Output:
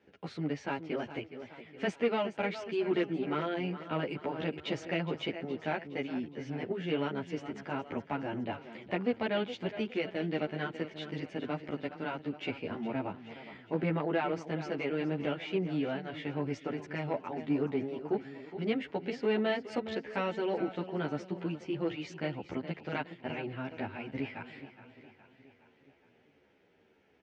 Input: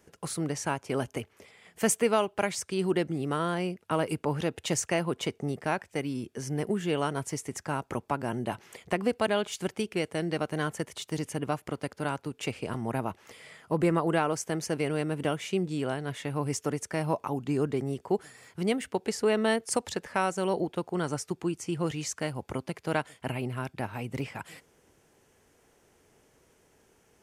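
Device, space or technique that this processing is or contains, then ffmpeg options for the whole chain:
barber-pole flanger into a guitar amplifier: -filter_complex "[0:a]asettb=1/sr,asplit=3[link_01][link_02][link_03];[link_01]atrim=end=2.764[link_04];[link_02]atrim=start=2.76:end=3.39,asetpts=PTS-STARTPTS,afade=type=in:duration=0.004:curve=qsin,afade=type=out:start_time=0.626:duration=0.004:curve=qsin,equalizer=frequency=1200:width_type=o:width=1.9:gain=4[link_05];[link_03]atrim=start=3.386[link_06];[link_04][link_05]acrossfade=duration=0.004:curve1=hsin:curve2=qsin[link_07];[link_07][link_06]acrossfade=duration=0.004:curve1=qsin:curve2=hsin,aecho=1:1:416|832|1248|1664|2080:0.211|0.114|0.0616|0.0333|0.018,asplit=2[link_08][link_09];[link_09]adelay=11.5,afreqshift=-1.7[link_10];[link_08][link_10]amix=inputs=2:normalize=1,asoftclip=type=tanh:threshold=-21dB,highpass=95,equalizer=frequency=130:width_type=q:width=4:gain=-6,equalizer=frequency=270:width_type=q:width=4:gain=3,equalizer=frequency=1100:width_type=q:width=4:gain=-7,equalizer=frequency=2300:width_type=q:width=4:gain=3,lowpass=frequency=3800:width=0.5412,lowpass=frequency=3800:width=1.3066"

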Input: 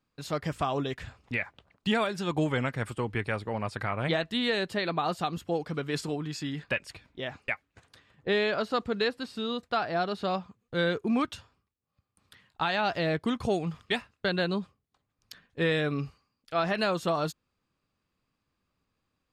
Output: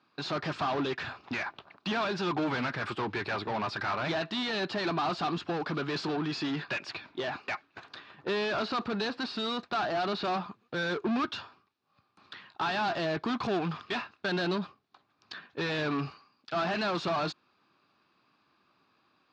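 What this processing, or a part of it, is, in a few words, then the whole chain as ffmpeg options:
overdrive pedal into a guitar cabinet: -filter_complex "[0:a]asplit=2[link_01][link_02];[link_02]highpass=frequency=720:poles=1,volume=29dB,asoftclip=type=tanh:threshold=-16.5dB[link_03];[link_01][link_03]amix=inputs=2:normalize=0,lowpass=frequency=7200:poles=1,volume=-6dB,highpass=100,equalizer=frequency=350:width_type=q:width=4:gain=4,equalizer=frequency=500:width_type=q:width=4:gain=-8,equalizer=frequency=2000:width_type=q:width=4:gain=-8,equalizer=frequency=3100:width_type=q:width=4:gain=-6,lowpass=frequency=4400:width=0.5412,lowpass=frequency=4400:width=1.3066,volume=-6dB"

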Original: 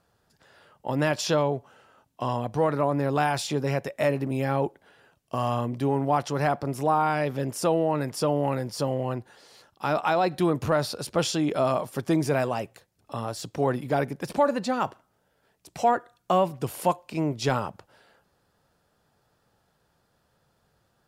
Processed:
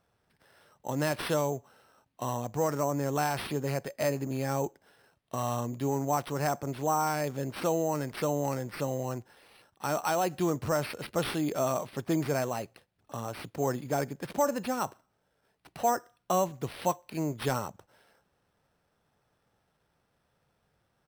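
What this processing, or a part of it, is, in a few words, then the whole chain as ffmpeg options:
crushed at another speed: -af "asetrate=35280,aresample=44100,acrusher=samples=8:mix=1:aa=0.000001,asetrate=55125,aresample=44100,volume=-5dB"

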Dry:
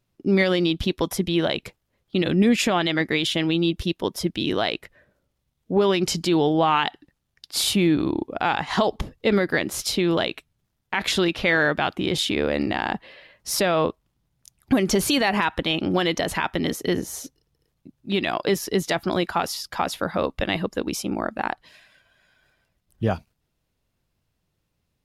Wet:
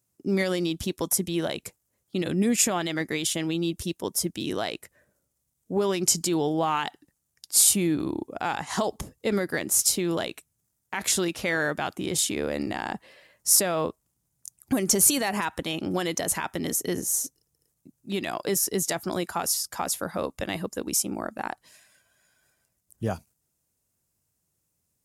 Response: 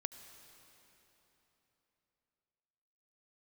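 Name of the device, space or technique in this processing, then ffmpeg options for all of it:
budget condenser microphone: -af "highpass=61,highshelf=frequency=5300:width_type=q:width=1.5:gain=13.5,volume=-5.5dB"

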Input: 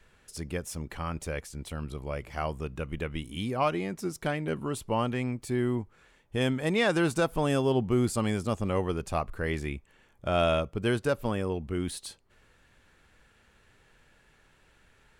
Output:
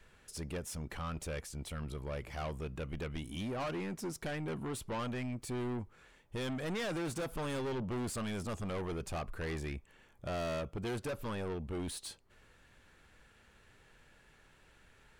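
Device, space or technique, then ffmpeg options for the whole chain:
saturation between pre-emphasis and de-emphasis: -af "highshelf=frequency=8500:gain=8,asoftclip=type=tanh:threshold=-33.5dB,highshelf=frequency=8500:gain=-8,volume=-1dB"

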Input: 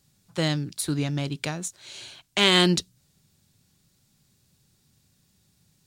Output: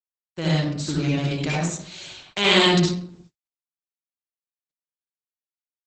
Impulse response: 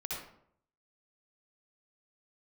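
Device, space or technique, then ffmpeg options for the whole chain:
speakerphone in a meeting room: -filter_complex "[1:a]atrim=start_sample=2205[link_01];[0:a][link_01]afir=irnorm=-1:irlink=0,dynaudnorm=framelen=200:gausssize=7:maxgain=4.5dB,agate=range=-48dB:threshold=-48dB:ratio=16:detection=peak" -ar 48000 -c:a libopus -b:a 12k

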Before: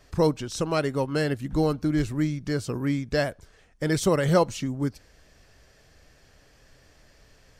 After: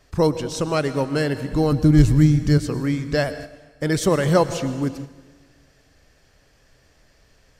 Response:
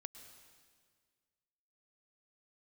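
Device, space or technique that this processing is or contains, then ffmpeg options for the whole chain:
keyed gated reverb: -filter_complex "[0:a]asettb=1/sr,asplit=3[link_01][link_02][link_03];[link_01]atrim=end=1.724[link_04];[link_02]atrim=start=1.72:end=2.58,asetpts=PTS-STARTPTS,afade=type=in:duration=0.004:curve=qsin,afade=type=out:start_time=0.856:duration=0.004:curve=qsin,bass=frequency=250:gain=13,treble=frequency=4000:gain=6[link_05];[link_03]atrim=start=2.576[link_06];[link_04][link_05]acrossfade=duration=0.004:curve1=hsin:curve2=qsin[link_07];[link_07][link_06]acrossfade=duration=0.004:curve1=qsin:curve2=hsin,asplit=3[link_08][link_09][link_10];[1:a]atrim=start_sample=2205[link_11];[link_09][link_11]afir=irnorm=-1:irlink=0[link_12];[link_10]apad=whole_len=335070[link_13];[link_12][link_13]sidechaingate=range=-7dB:threshold=-45dB:ratio=16:detection=peak,volume=12dB[link_14];[link_08][link_14]amix=inputs=2:normalize=0,volume=-6.5dB"

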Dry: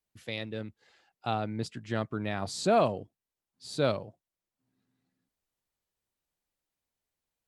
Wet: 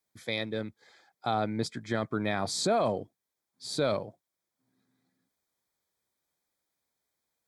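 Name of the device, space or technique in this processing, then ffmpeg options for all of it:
PA system with an anti-feedback notch: -af "highpass=frequency=170:poles=1,asuperstop=centerf=2800:order=8:qfactor=5.1,alimiter=limit=-23dB:level=0:latency=1:release=11,volume=5dB"

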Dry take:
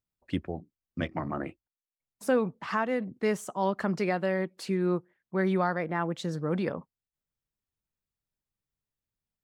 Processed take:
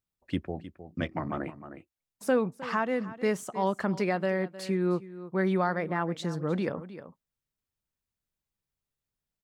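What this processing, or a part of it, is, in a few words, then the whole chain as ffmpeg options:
ducked delay: -filter_complex "[0:a]asplit=3[link_01][link_02][link_03];[link_02]adelay=310,volume=-6.5dB[link_04];[link_03]apad=whole_len=429747[link_05];[link_04][link_05]sidechaincompress=threshold=-33dB:ratio=10:attack=6:release=958[link_06];[link_01][link_06]amix=inputs=2:normalize=0"

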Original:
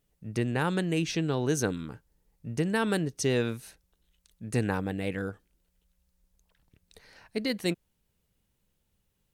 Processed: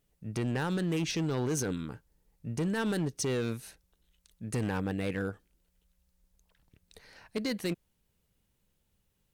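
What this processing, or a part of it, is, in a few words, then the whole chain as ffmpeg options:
limiter into clipper: -af "alimiter=limit=-20.5dB:level=0:latency=1:release=26,asoftclip=type=hard:threshold=-26dB"

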